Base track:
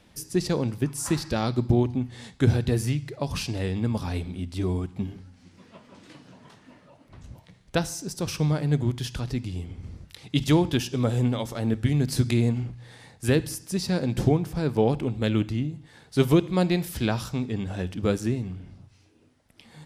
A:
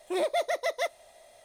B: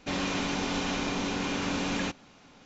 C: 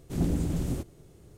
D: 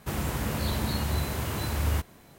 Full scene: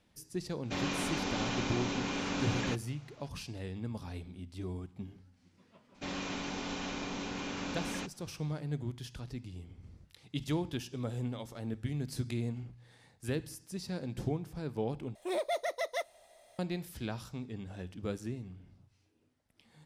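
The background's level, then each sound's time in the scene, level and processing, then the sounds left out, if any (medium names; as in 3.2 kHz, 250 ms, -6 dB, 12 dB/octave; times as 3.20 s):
base track -13 dB
0.64 s: add B -4.5 dB
5.95 s: add B -8 dB
15.15 s: replace with A -5.5 dB
not used: C, D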